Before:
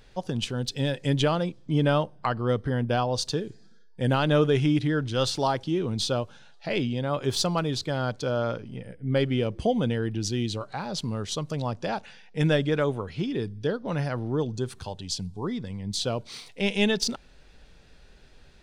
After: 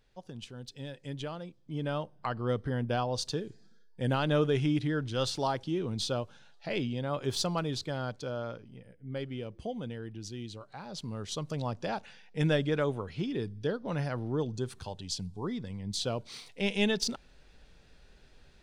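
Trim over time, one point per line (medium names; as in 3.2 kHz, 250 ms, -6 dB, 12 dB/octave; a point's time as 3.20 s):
1.49 s -15 dB
2.44 s -5.5 dB
7.77 s -5.5 dB
8.89 s -13 dB
10.61 s -13 dB
11.47 s -4.5 dB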